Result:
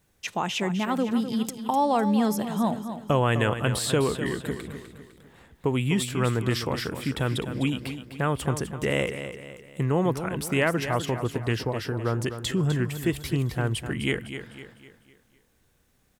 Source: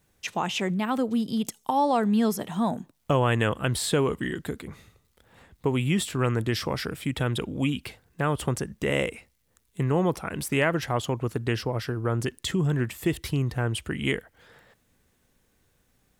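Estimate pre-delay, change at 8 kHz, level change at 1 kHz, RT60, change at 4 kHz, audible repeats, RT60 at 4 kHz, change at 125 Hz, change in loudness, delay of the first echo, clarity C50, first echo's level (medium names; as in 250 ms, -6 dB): no reverb, +0.5 dB, +0.5 dB, no reverb, +0.5 dB, 4, no reverb, +0.5 dB, +0.5 dB, 253 ms, no reverb, -10.0 dB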